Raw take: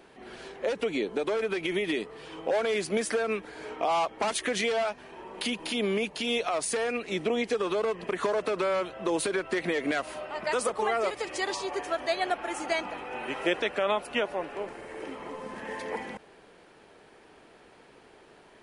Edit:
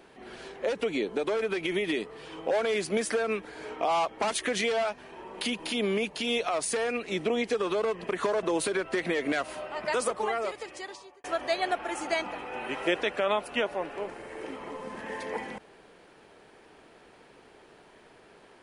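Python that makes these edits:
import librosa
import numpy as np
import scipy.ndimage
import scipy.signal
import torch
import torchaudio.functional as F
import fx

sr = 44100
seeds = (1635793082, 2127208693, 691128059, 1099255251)

y = fx.edit(x, sr, fx.cut(start_s=8.43, length_s=0.59),
    fx.fade_out_span(start_s=10.62, length_s=1.21), tone=tone)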